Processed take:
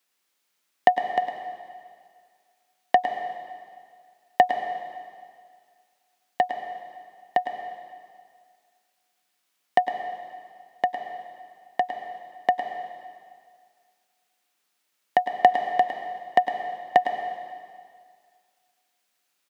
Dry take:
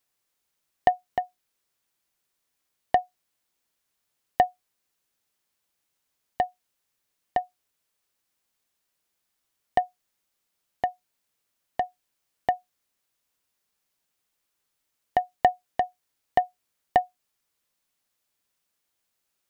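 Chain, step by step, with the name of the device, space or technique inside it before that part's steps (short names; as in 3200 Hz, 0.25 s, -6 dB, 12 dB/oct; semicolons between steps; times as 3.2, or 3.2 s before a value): PA in a hall (HPF 160 Hz 24 dB/oct; bell 2500 Hz +4.5 dB 2.5 oct; echo 0.107 s -10.5 dB; reverb RT60 2.0 s, pre-delay 93 ms, DRR 6.5 dB); gain +1.5 dB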